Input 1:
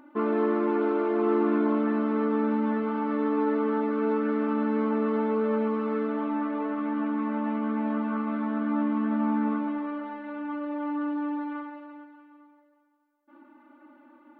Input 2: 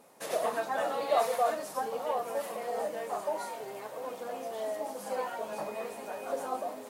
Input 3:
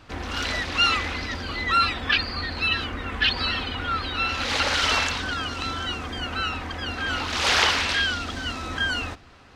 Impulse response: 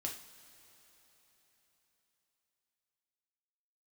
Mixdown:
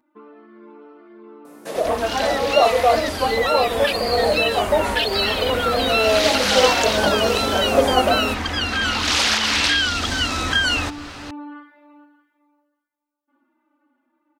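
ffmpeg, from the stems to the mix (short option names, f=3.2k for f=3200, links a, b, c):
-filter_complex "[0:a]acompressor=threshold=-28dB:ratio=3,asplit=2[a][b];[b]adelay=5.9,afreqshift=-1.7[c];[a][c]amix=inputs=2:normalize=1,volume=-12dB[d];[1:a]equalizer=f=230:w=0.31:g=12,acrossover=split=5000[e][f];[f]acompressor=threshold=-51dB:ratio=4:attack=1:release=60[g];[e][g]amix=inputs=2:normalize=0,adelay=1450,volume=0dB[h];[2:a]alimiter=limit=-14.5dB:level=0:latency=1:release=270,acompressor=threshold=-39dB:ratio=2,adelay=1750,volume=2dB[i];[d][h][i]amix=inputs=3:normalize=0,highshelf=f=3k:g=8.5,dynaudnorm=f=390:g=13:m=13dB"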